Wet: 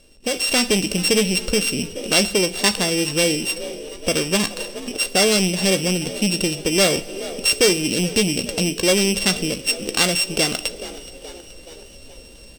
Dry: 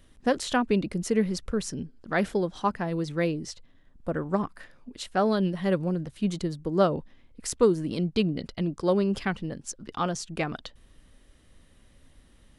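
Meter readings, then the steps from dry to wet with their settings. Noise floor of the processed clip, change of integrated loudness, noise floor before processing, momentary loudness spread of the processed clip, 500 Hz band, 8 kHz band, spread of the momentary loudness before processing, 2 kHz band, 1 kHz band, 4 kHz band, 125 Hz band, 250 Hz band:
−43 dBFS, +9.0 dB, −58 dBFS, 11 LU, +6.0 dB, +19.0 dB, 13 LU, +13.5 dB, +1.0 dB, +20.0 dB, +4.0 dB, +5.0 dB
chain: samples sorted by size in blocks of 16 samples
pitch vibrato 4.4 Hz 7.3 cents
double-tracking delay 16 ms −13.5 dB
coupled-rooms reverb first 0.42 s, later 4.5 s, from −22 dB, DRR 13 dB
soft clipping −21.5 dBFS, distortion −11 dB
on a send: echo with shifted repeats 425 ms, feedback 57%, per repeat +57 Hz, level −21 dB
on the sum: automatic gain control gain up to 9 dB
octave-band graphic EQ 125/500/1,000/4,000/8,000 Hz −4/+12/−4/+11/+11 dB
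in parallel at −2 dB: downward compressor, threshold −21 dBFS, peak gain reduction 16 dB
on the sum: dynamic equaliser 490 Hz, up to −7 dB, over −24 dBFS, Q 1.1
level −3.5 dB

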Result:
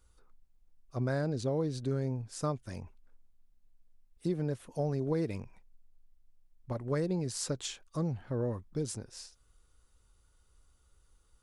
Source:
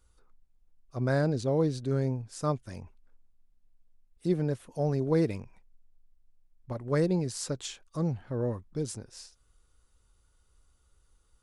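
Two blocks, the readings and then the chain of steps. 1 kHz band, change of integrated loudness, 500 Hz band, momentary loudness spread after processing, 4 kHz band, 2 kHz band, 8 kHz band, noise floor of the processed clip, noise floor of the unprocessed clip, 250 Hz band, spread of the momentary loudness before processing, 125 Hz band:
−4.0 dB, −4.5 dB, −4.5 dB, 12 LU, −1.0 dB, −5.0 dB, −0.5 dB, −68 dBFS, −68 dBFS, −4.5 dB, 15 LU, −4.0 dB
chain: downward compressor 5 to 1, threshold −28 dBFS, peak gain reduction 7 dB

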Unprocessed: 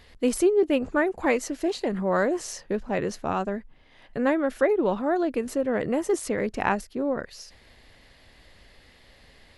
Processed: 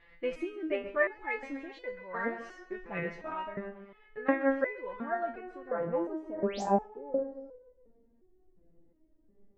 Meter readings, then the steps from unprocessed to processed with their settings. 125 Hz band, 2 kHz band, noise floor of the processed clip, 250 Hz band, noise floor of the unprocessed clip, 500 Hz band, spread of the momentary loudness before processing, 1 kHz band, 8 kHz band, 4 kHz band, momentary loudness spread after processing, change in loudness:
−8.5 dB, −4.5 dB, −65 dBFS, −10.0 dB, −55 dBFS, −8.5 dB, 8 LU, −6.0 dB, below −20 dB, −12.5 dB, 14 LU, −8.5 dB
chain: low-pass filter sweep 2,100 Hz → 330 Hz, 0:04.84–0:07.85
tape delay 135 ms, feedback 55%, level −13 dB, low-pass 5,400 Hz
sound drawn into the spectrogram rise, 0:06.37–0:06.62, 420–8,400 Hz −37 dBFS
step-sequenced resonator 2.8 Hz 170–500 Hz
level +3.5 dB

